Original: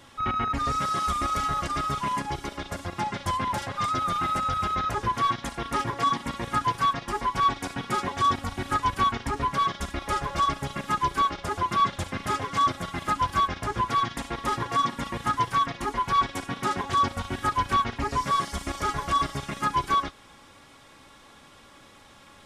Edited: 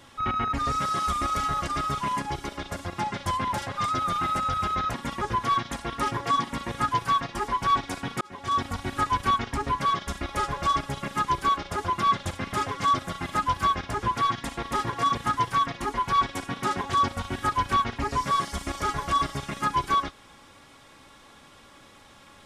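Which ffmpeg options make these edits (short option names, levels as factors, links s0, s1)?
-filter_complex "[0:a]asplit=5[s0][s1][s2][s3][s4];[s0]atrim=end=4.942[s5];[s1]atrim=start=14.878:end=15.152[s6];[s2]atrim=start=4.938:end=7.94,asetpts=PTS-STARTPTS,afade=t=out:st=2.998:d=0.004:c=hsin[s7];[s3]atrim=start=7.94:end=14.882,asetpts=PTS-STARTPTS,afade=t=in:d=0.46[s8];[s4]atrim=start=15.148[s9];[s5][s6]acrossfade=d=0.004:c1=hsin:c2=hsin[s10];[s7][s8]concat=n=2:v=0:a=1[s11];[s10][s11]acrossfade=d=0.004:c1=hsin:c2=hsin[s12];[s12][s9]acrossfade=d=0.004:c1=hsin:c2=hsin"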